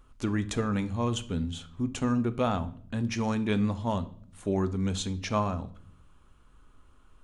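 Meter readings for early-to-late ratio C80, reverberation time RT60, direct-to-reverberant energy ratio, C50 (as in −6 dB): 21.5 dB, 0.55 s, 11.0 dB, 17.0 dB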